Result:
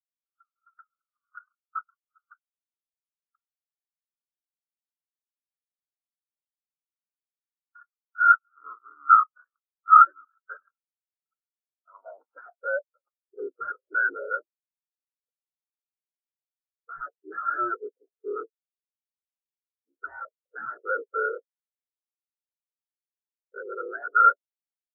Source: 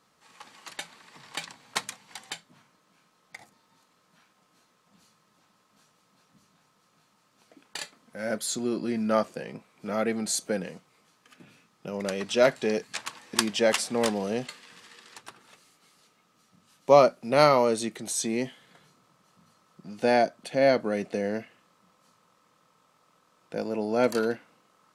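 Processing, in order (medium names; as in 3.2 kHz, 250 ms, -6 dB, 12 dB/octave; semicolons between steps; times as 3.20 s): cycle switcher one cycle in 3, inverted; band-pass sweep 1.2 kHz -> 480 Hz, 11.67–13.16 s; sine folder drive 18 dB, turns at -13 dBFS; peaking EQ 1.4 kHz +12.5 dB 0.57 oct; low-pass that closes with the level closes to 1.8 kHz, closed at -13 dBFS; spectral contrast expander 4:1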